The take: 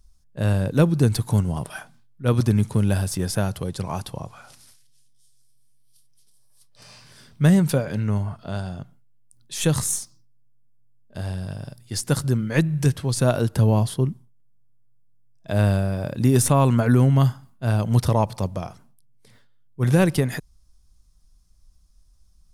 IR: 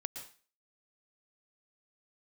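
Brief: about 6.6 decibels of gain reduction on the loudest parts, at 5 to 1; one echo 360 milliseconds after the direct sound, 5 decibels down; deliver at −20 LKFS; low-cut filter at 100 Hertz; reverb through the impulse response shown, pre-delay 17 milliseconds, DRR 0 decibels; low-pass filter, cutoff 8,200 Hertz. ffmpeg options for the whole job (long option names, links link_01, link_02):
-filter_complex "[0:a]highpass=100,lowpass=8200,acompressor=threshold=-20dB:ratio=5,aecho=1:1:360:0.562,asplit=2[link_01][link_02];[1:a]atrim=start_sample=2205,adelay=17[link_03];[link_02][link_03]afir=irnorm=-1:irlink=0,volume=1dB[link_04];[link_01][link_04]amix=inputs=2:normalize=0,volume=4dB"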